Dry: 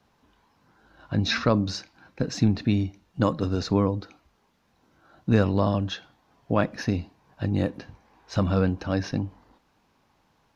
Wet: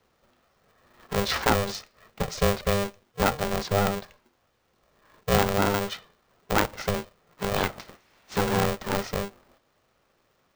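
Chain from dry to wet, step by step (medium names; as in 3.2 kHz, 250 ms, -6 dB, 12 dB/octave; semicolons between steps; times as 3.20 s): 7.48–8.35 s: spectral peaks clipped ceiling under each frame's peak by 18 dB; dynamic bell 1 kHz, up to +7 dB, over -43 dBFS, Q 2.5; polarity switched at an audio rate 300 Hz; trim -2 dB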